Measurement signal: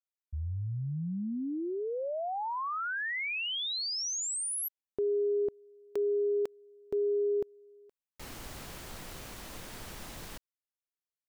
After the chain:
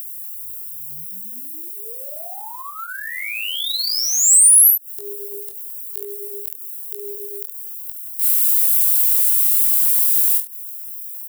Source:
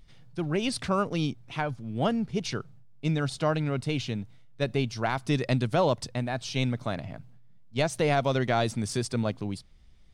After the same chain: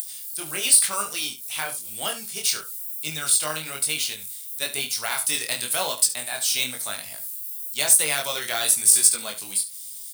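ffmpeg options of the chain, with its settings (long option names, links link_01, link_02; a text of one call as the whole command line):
ffmpeg -i in.wav -filter_complex "[0:a]flanger=delay=19:depth=6.9:speed=1,adynamicequalizer=threshold=0.00631:dfrequency=270:dqfactor=0.85:tfrequency=270:tqfactor=0.85:attack=5:release=100:ratio=0.45:range=2:mode=cutabove:tftype=bell,acrossover=split=640|4300[link_01][link_02][link_03];[link_03]acompressor=mode=upward:threshold=-48dB:ratio=2.5:attack=2.9:release=114:knee=2.83:detection=peak[link_04];[link_01][link_02][link_04]amix=inputs=3:normalize=0,aderivative,acrusher=bits=5:mode=log:mix=0:aa=0.000001,aexciter=amount=6.3:drive=2.8:freq=8300,aecho=1:1:20|32|71:0.335|0.133|0.224,alimiter=level_in=20dB:limit=-1dB:release=50:level=0:latency=1,volume=-1.5dB" out.wav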